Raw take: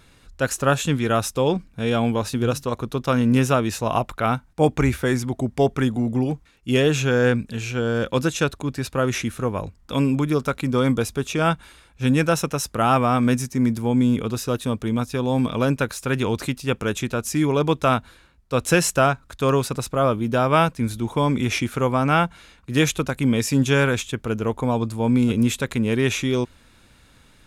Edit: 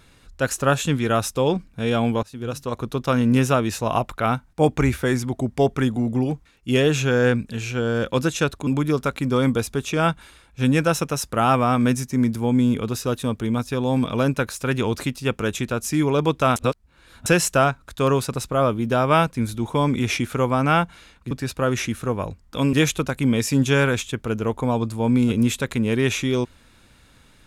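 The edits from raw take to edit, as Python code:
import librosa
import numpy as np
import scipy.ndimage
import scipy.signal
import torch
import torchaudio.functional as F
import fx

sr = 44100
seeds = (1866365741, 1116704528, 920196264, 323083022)

y = fx.edit(x, sr, fx.fade_in_from(start_s=2.23, length_s=0.61, floor_db=-22.5),
    fx.move(start_s=8.67, length_s=1.42, to_s=22.73),
    fx.reverse_span(start_s=17.98, length_s=0.7), tone=tone)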